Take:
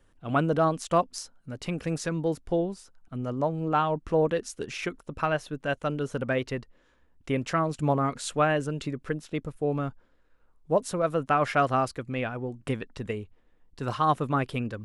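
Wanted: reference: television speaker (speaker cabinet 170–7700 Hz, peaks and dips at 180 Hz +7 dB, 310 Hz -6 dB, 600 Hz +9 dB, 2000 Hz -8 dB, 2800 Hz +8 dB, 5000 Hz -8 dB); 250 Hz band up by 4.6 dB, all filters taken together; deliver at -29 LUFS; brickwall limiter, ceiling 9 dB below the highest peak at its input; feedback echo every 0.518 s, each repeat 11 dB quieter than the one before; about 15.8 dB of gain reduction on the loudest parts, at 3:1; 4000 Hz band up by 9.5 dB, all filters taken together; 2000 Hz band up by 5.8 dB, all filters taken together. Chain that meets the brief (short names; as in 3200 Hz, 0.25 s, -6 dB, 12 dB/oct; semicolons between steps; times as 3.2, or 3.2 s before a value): bell 250 Hz +8.5 dB; bell 2000 Hz +7.5 dB; bell 4000 Hz +5.5 dB; compressor 3:1, threshold -38 dBFS; limiter -29 dBFS; speaker cabinet 170–7700 Hz, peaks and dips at 180 Hz +7 dB, 310 Hz -6 dB, 600 Hz +9 dB, 2000 Hz -8 dB, 2800 Hz +8 dB, 5000 Hz -8 dB; feedback echo 0.518 s, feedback 28%, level -11 dB; gain +10 dB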